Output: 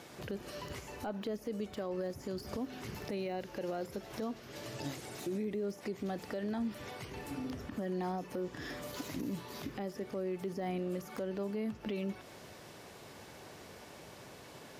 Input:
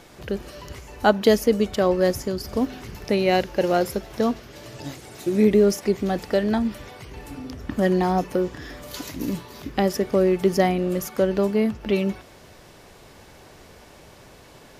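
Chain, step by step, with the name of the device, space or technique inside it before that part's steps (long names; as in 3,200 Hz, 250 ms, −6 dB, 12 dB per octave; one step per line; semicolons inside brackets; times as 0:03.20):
podcast mastering chain (high-pass filter 100 Hz 12 dB per octave; de-essing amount 90%; downward compressor 2.5 to 1, threshold −31 dBFS, peak gain reduction 12.5 dB; brickwall limiter −25.5 dBFS, peak gain reduction 9.5 dB; level −3 dB; MP3 128 kbit/s 44,100 Hz)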